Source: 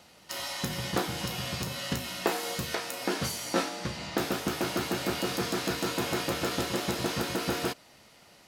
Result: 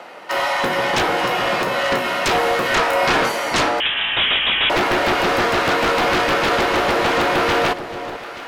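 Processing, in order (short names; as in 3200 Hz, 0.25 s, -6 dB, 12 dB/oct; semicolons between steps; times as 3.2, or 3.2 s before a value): HPF 120 Hz; three-band isolator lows -22 dB, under 340 Hz, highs -21 dB, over 2300 Hz; sine folder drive 19 dB, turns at -14 dBFS; 2.62–3.22 doubler 29 ms -2.5 dB; echo with dull and thin repeats by turns 0.44 s, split 950 Hz, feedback 58%, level -10 dB; 3.8–4.7 inverted band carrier 3700 Hz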